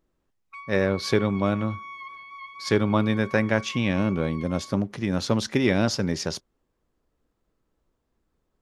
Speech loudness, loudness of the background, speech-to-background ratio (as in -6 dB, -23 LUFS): -25.0 LUFS, -41.0 LUFS, 16.0 dB